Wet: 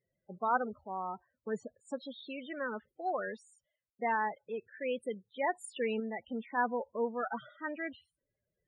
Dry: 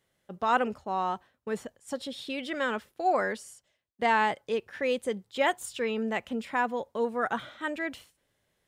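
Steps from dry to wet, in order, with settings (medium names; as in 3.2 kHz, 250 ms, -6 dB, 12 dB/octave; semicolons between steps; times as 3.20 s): random-step tremolo 3.5 Hz; loudest bins only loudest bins 16; trim -2.5 dB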